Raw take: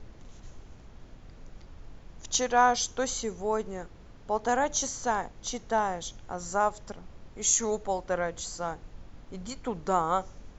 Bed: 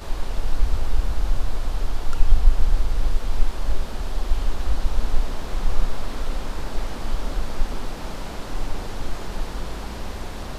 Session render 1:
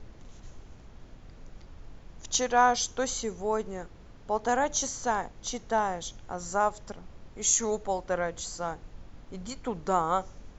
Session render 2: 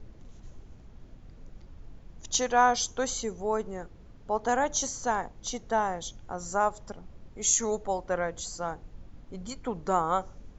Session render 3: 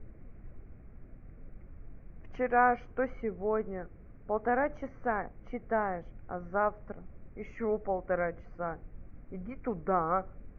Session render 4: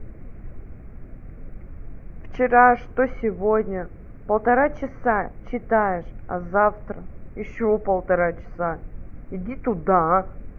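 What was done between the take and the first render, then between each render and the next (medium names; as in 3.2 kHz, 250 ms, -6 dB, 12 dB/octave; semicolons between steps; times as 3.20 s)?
no audible change
noise reduction 6 dB, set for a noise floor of -51 dBFS
elliptic low-pass 2.3 kHz, stop band 40 dB; peaking EQ 920 Hz -10 dB 0.34 oct
trim +11 dB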